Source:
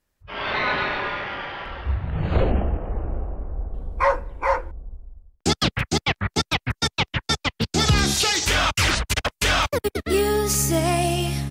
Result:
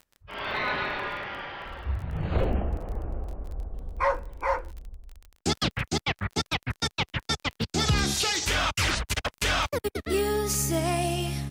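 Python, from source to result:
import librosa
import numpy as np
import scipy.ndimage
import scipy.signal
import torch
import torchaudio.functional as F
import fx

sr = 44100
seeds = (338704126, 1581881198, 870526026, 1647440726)

y = fx.dmg_crackle(x, sr, seeds[0], per_s=22.0, level_db=-31.0)
y = y * librosa.db_to_amplitude(-5.5)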